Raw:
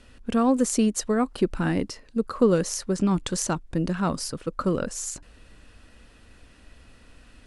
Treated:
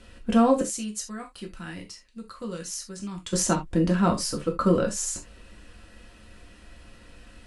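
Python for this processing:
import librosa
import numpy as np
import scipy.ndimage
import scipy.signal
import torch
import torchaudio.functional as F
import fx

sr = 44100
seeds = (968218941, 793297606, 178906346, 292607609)

y = fx.tone_stack(x, sr, knobs='5-5-5', at=(0.61, 3.33))
y = fx.rev_gated(y, sr, seeds[0], gate_ms=100, shape='falling', drr_db=0.5)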